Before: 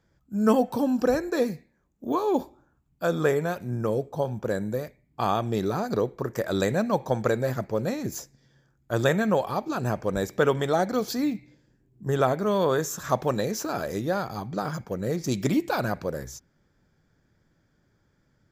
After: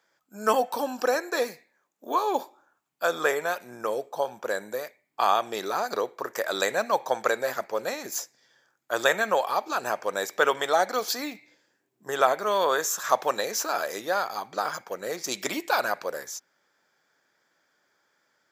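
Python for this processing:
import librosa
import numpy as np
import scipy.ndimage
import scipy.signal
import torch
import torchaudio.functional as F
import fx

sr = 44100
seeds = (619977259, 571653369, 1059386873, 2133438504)

y = scipy.signal.sosfilt(scipy.signal.butter(2, 720.0, 'highpass', fs=sr, output='sos'), x)
y = y * 10.0 ** (5.5 / 20.0)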